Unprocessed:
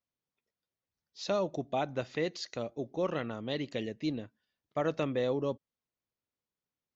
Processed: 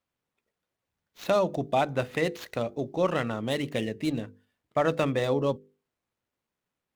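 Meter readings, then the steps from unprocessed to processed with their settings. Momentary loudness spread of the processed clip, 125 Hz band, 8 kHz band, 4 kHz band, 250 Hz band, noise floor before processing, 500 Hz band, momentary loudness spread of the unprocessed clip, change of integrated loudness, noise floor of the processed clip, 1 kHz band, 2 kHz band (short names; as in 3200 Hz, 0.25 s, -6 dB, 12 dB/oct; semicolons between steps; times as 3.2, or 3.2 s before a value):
7 LU, +7.5 dB, n/a, +4.0 dB, +5.0 dB, under -85 dBFS, +6.0 dB, 8 LU, +6.0 dB, under -85 dBFS, +8.0 dB, +8.0 dB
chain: median filter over 9 samples; notches 50/100/150/200/250/300/350/400/450/500 Hz; dynamic EQ 360 Hz, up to -4 dB, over -41 dBFS, Q 1; gain +9 dB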